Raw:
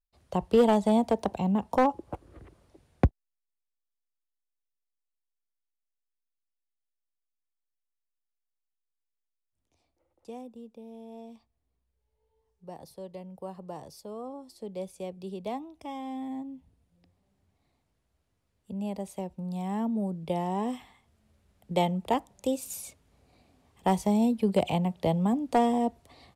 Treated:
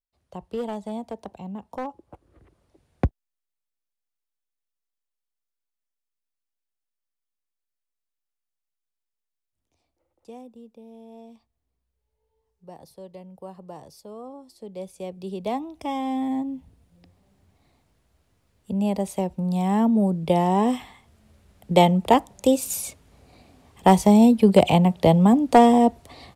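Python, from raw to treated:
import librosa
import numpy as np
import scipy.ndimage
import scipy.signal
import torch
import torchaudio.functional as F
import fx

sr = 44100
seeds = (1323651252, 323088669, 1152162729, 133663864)

y = fx.gain(x, sr, db=fx.line((2.11, -9.0), (3.06, 0.0), (14.67, 0.0), (15.86, 10.0)))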